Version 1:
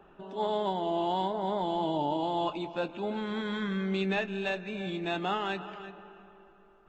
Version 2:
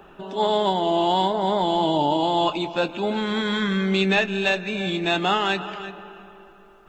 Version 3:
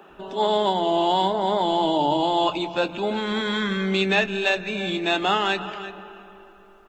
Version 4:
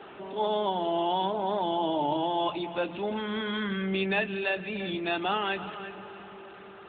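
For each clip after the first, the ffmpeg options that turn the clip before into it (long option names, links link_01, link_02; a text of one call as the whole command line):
ffmpeg -i in.wav -af "highshelf=frequency=2800:gain=8.5,volume=8.5dB" out.wav
ffmpeg -i in.wav -filter_complex "[0:a]acrossover=split=160[link_01][link_02];[link_01]adelay=90[link_03];[link_03][link_02]amix=inputs=2:normalize=0" out.wav
ffmpeg -i in.wav -af "aeval=exprs='val(0)+0.5*0.02*sgn(val(0))':channel_layout=same,volume=-7dB" -ar 8000 -c:a libopencore_amrnb -b:a 12200 out.amr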